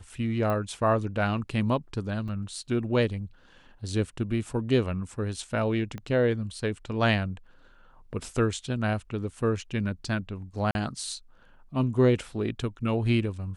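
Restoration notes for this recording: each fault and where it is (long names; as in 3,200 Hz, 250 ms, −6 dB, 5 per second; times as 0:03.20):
0:00.50: click −18 dBFS
0:02.28: drop-out 4.4 ms
0:05.98: click −24 dBFS
0:10.71–0:10.75: drop-out 41 ms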